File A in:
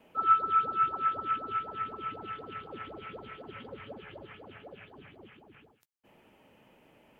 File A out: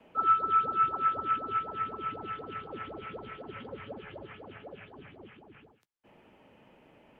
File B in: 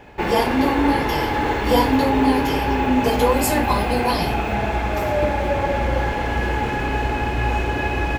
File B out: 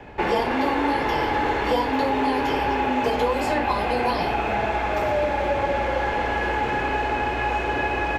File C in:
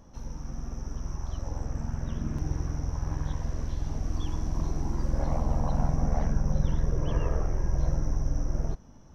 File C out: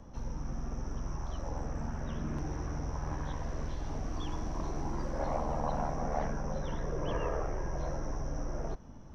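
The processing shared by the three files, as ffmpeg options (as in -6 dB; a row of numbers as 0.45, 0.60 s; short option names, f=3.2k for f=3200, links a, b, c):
-filter_complex "[0:a]aemphasis=mode=reproduction:type=50kf,acrossover=split=360|2700|5700[a][b][c][d];[a]acompressor=threshold=-31dB:ratio=4[e];[b]acompressor=threshold=-23dB:ratio=4[f];[c]acompressor=threshold=-40dB:ratio=4[g];[d]acompressor=threshold=-53dB:ratio=4[h];[e][f][g][h]amix=inputs=4:normalize=0,acrossover=split=270[i][j];[i]asoftclip=type=tanh:threshold=-32dB[k];[k][j]amix=inputs=2:normalize=0,volume=2.5dB"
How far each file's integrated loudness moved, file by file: 0.0, -3.0, -6.0 LU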